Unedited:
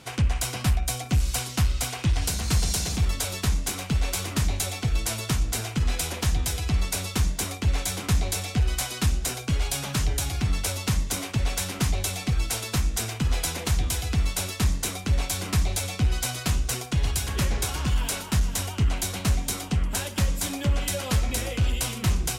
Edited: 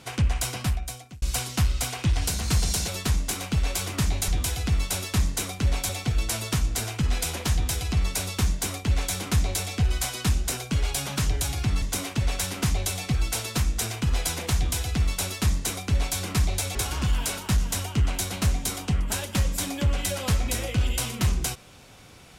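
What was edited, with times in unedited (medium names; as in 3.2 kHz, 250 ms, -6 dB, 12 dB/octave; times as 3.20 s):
0.47–1.22 s: fade out
2.88–3.26 s: delete
10.59–11.00 s: delete
13.74–15.35 s: copy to 4.66 s
15.93–17.58 s: delete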